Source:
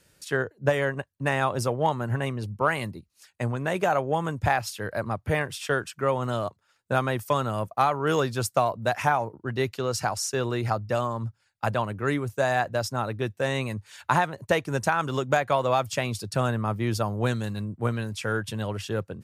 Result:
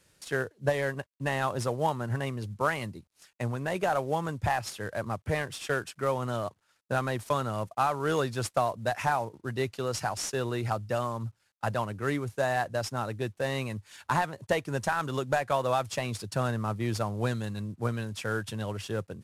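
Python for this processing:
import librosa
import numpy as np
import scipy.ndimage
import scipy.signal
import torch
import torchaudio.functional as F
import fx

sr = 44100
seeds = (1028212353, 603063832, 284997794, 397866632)

y = fx.cvsd(x, sr, bps=64000)
y = y * librosa.db_to_amplitude(-3.5)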